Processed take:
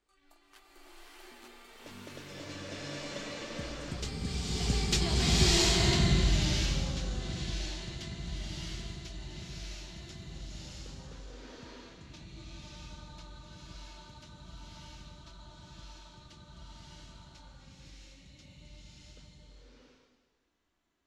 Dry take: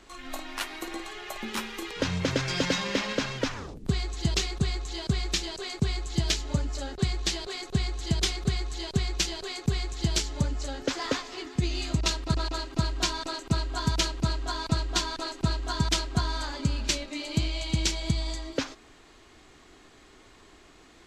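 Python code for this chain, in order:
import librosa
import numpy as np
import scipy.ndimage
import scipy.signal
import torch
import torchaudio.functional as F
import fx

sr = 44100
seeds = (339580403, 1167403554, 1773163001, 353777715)

y = fx.doppler_pass(x, sr, speed_mps=27, closest_m=6.7, pass_at_s=5.12)
y = fx.rev_bloom(y, sr, seeds[0], attack_ms=690, drr_db=-8.5)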